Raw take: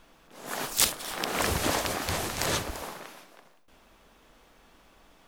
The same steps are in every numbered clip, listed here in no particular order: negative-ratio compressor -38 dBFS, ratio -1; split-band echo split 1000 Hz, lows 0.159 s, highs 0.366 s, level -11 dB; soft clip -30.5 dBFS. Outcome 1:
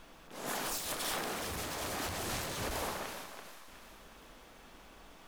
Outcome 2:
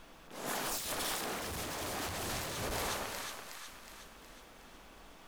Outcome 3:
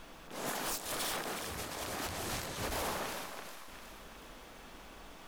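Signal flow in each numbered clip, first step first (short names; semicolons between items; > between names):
soft clip > negative-ratio compressor > split-band echo; split-band echo > soft clip > negative-ratio compressor; negative-ratio compressor > split-band echo > soft clip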